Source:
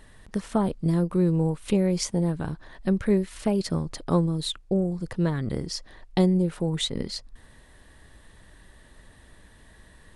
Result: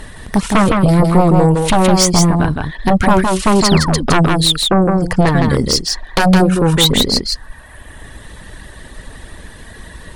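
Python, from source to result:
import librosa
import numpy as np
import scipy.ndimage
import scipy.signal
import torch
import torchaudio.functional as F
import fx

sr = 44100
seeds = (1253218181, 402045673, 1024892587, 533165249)

y = fx.dereverb_blind(x, sr, rt60_s=1.4)
y = fx.fold_sine(y, sr, drive_db=14, ceiling_db=-8.5)
y = y + 10.0 ** (-3.5 / 20.0) * np.pad(y, (int(162 * sr / 1000.0), 0))[:len(y)]
y = fx.spec_paint(y, sr, seeds[0], shape='fall', start_s=3.62, length_s=0.44, low_hz=200.0, high_hz=7900.0, level_db=-25.0)
y = y * librosa.db_to_amplitude(1.5)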